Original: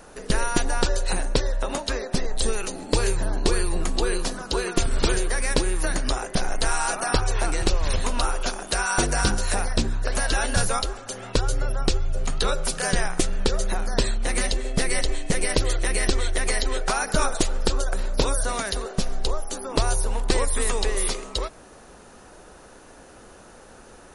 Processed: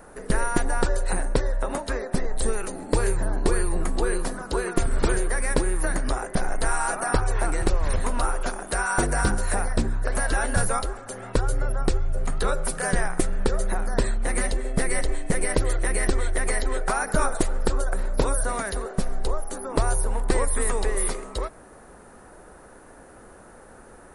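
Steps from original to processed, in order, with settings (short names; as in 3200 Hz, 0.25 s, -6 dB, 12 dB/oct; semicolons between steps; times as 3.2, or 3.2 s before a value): band shelf 4200 Hz -10 dB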